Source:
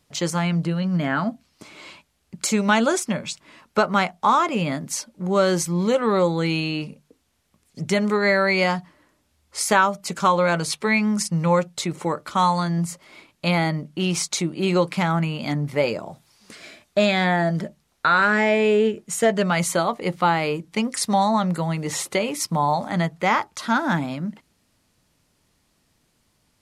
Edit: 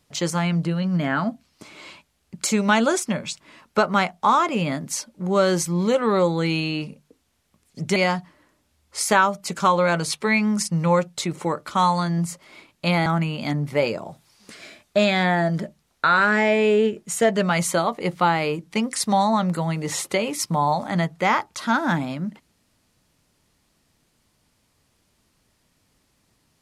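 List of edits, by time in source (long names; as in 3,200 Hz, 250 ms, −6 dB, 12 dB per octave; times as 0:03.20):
0:07.96–0:08.56: remove
0:13.66–0:15.07: remove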